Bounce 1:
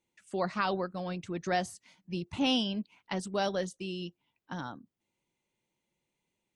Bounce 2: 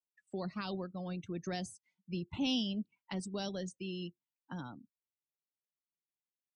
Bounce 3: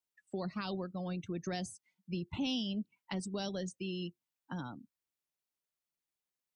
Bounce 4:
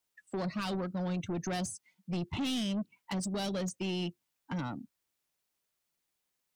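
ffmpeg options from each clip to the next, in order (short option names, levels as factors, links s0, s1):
-filter_complex "[0:a]acrossover=split=320|3000[s0][s1][s2];[s1]acompressor=threshold=0.00501:ratio=2.5[s3];[s0][s3][s2]amix=inputs=3:normalize=0,afftdn=nr=25:nf=-49,volume=0.794"
-af "acompressor=threshold=0.0141:ratio=2,volume=1.33"
-af "asoftclip=type=tanh:threshold=0.0119,volume=2.66"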